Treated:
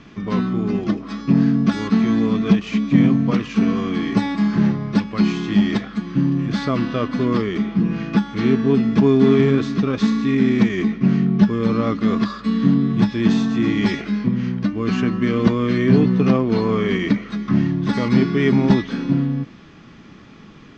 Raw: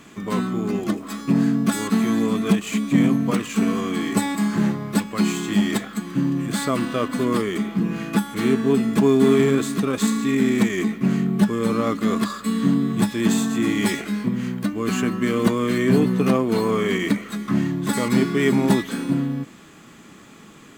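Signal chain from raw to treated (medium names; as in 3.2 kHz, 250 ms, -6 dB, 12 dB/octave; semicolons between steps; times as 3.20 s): elliptic low-pass 5.6 kHz, stop band 60 dB; bass shelf 160 Hz +12 dB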